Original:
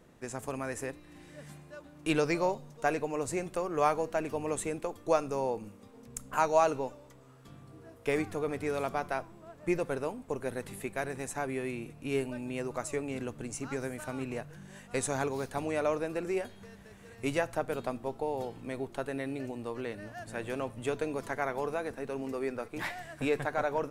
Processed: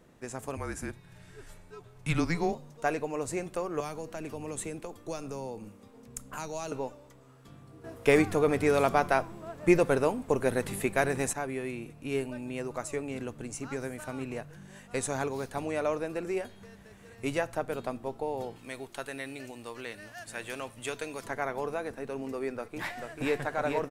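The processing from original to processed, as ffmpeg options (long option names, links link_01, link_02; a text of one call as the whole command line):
ffmpeg -i in.wav -filter_complex "[0:a]asettb=1/sr,asplit=3[link_01][link_02][link_03];[link_01]atrim=end=0.574[link_04];[link_02]atrim=start=0.57:end=2.53,asetpts=PTS-STARTPTS,afade=type=in:duration=0.004:curve=qsin,afade=type=out:start_time=1.956:duration=0.004:curve=qsin,afreqshift=-170[link_05];[link_03]atrim=start=2.526[link_06];[link_04][link_05]acrossfade=duration=0.004:curve1=hsin:curve2=qsin[link_07];[link_07][link_06]acrossfade=duration=0.004:curve1=qsin:curve2=hsin,asettb=1/sr,asplit=3[link_08][link_09][link_10];[link_08]atrim=end=3.804[link_11];[link_09]atrim=start=3.8:end=6.72,asetpts=PTS-STARTPTS,afade=type=in:duration=0.004:curve=qsin,afade=type=out:start_time=2.916:duration=0.004:curve=qsin,acrossover=split=270|3000[link_12][link_13][link_14];[link_13]acompressor=threshold=-38dB:ratio=4:attack=3.2:release=140:knee=2.83:detection=peak[link_15];[link_12][link_15][link_14]amix=inputs=3:normalize=0[link_16];[link_10]atrim=start=6.716[link_17];[link_11][link_16]acrossfade=duration=0.004:curve1=hsin:curve2=qsin[link_18];[link_18][link_17]acrossfade=duration=0.004:curve1=qsin:curve2=hsin,asettb=1/sr,asplit=3[link_19][link_20][link_21];[link_19]atrim=end=18.564[link_22];[link_20]atrim=start=18.56:end=21.24,asetpts=PTS-STARTPTS,afade=type=in:duration=0.004:curve=qsin,afade=type=out:start_time=2.676:duration=0.004:curve=qsin,tiltshelf=frequency=1200:gain=-7[link_23];[link_21]atrim=start=21.236[link_24];[link_22][link_23]acrossfade=duration=0.004:curve1=hsin:curve2=qsin[link_25];[link_25][link_24]acrossfade=duration=0.004:curve1=qsin:curve2=hsin,asplit=2[link_26][link_27];[link_27]afade=type=in:start_time=22.53:duration=0.01,afade=type=out:start_time=23.4:duration=0.01,aecho=0:1:440|880|1320|1760:0.595662|0.208482|0.0729686|0.025539[link_28];[link_26][link_28]amix=inputs=2:normalize=0,asplit=3[link_29][link_30][link_31];[link_29]atrim=end=7.842[link_32];[link_30]atrim=start=7.838:end=11.332,asetpts=PTS-STARTPTS,volume=8dB[link_33];[link_31]atrim=start=11.328[link_34];[link_32][link_33]acrossfade=duration=0.004:curve1=hsin:curve2=hsin[link_35];[link_35][link_34]acrossfade=duration=0.004:curve1=hsin:curve2=hsin" out.wav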